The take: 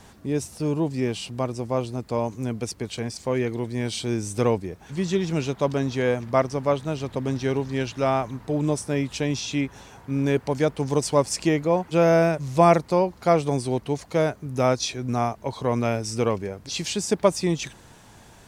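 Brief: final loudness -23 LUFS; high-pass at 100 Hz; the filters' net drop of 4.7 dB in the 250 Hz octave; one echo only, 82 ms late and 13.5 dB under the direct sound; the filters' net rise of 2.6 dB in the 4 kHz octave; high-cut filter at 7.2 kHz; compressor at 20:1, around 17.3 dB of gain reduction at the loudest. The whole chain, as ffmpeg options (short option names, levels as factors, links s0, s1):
-af "highpass=100,lowpass=7200,equalizer=f=250:t=o:g=-6.5,equalizer=f=4000:t=o:g=4,acompressor=threshold=0.0355:ratio=20,aecho=1:1:82:0.211,volume=3.98"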